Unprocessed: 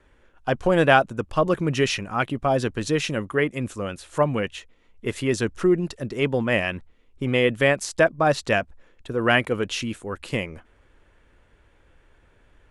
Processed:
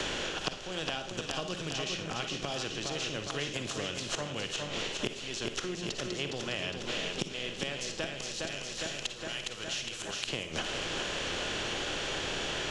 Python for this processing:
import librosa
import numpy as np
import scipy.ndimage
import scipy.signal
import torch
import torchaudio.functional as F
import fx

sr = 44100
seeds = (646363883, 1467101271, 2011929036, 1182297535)

y = fx.bin_compress(x, sr, power=0.6)
y = fx.band_shelf(y, sr, hz=4500.0, db=14.5, octaves=1.7)
y = fx.gate_flip(y, sr, shuts_db=-13.0, range_db=-24)
y = fx.rider(y, sr, range_db=10, speed_s=0.5)
y = fx.pre_emphasis(y, sr, coefficient=0.9, at=(8.15, 10.28))
y = fx.echo_feedback(y, sr, ms=410, feedback_pct=57, wet_db=-6.5)
y = fx.rev_schroeder(y, sr, rt60_s=0.36, comb_ms=38, drr_db=7.5)
y = fx.band_squash(y, sr, depth_pct=100)